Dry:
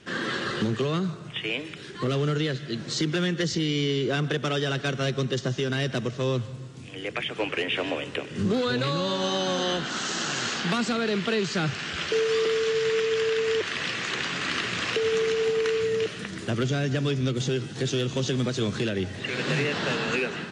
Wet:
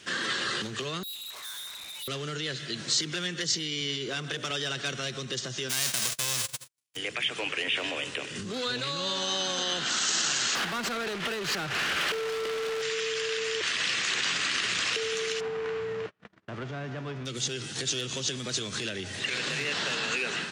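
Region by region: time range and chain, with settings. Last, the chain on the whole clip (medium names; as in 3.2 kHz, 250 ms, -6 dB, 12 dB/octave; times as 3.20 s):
1.03–2.08 s: frequency inversion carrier 4 kHz + valve stage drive 45 dB, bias 0.5
3.81–4.51 s: high-pass 57 Hz 24 dB/octave + hum notches 60/120/180/240/300/360/420/480/540/600 Hz
5.69–6.95 s: formants flattened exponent 0.3 + gate -36 dBFS, range -56 dB
10.55–12.82 s: tilt EQ -1.5 dB/octave + overdrive pedal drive 26 dB, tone 1.2 kHz, clips at -14 dBFS
15.39–17.25 s: formants flattened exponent 0.6 + gate -33 dBFS, range -35 dB + low-pass 1.1 kHz
whole clip: bass shelf 110 Hz +10 dB; peak limiter -23 dBFS; tilt EQ +3.5 dB/octave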